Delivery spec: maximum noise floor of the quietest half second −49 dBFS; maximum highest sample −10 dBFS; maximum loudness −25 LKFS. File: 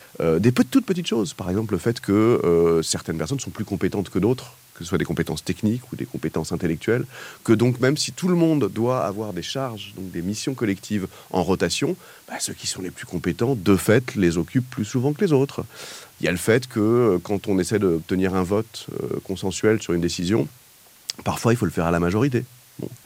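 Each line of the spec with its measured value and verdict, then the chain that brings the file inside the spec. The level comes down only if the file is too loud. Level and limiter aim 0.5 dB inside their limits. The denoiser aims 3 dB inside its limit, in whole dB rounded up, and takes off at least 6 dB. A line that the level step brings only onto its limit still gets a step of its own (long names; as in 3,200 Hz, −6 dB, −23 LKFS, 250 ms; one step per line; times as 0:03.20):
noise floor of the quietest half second −51 dBFS: in spec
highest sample −5.5 dBFS: out of spec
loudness −22.5 LKFS: out of spec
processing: level −3 dB
brickwall limiter −10.5 dBFS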